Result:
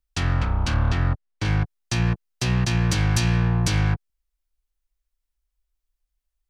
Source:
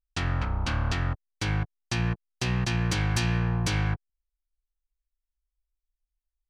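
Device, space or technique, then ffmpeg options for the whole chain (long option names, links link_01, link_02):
one-band saturation: -filter_complex "[0:a]asettb=1/sr,asplit=3[link_01][link_02][link_03];[link_01]atrim=end=0.744[link_04];[link_02]atrim=start=0.74:end=1.45,asetpts=PTS-STARTPTS,afade=type=in:duration=0.004:curve=qsin,afade=type=out:start_time=0.706:duration=0.004:curve=qsin,aemphasis=mode=reproduction:type=75fm[link_05];[link_03]atrim=start=1.446[link_06];[link_04][link_05]acrossfade=duration=0.004:curve1=hsin:curve2=qsin[link_07];[link_07][link_06]acrossfade=duration=0.004:curve1=qsin:curve2=hsin,acrossover=split=230|4000[link_08][link_09][link_10];[link_09]asoftclip=type=tanh:threshold=-32.5dB[link_11];[link_08][link_11][link_10]amix=inputs=3:normalize=0,volume=6dB"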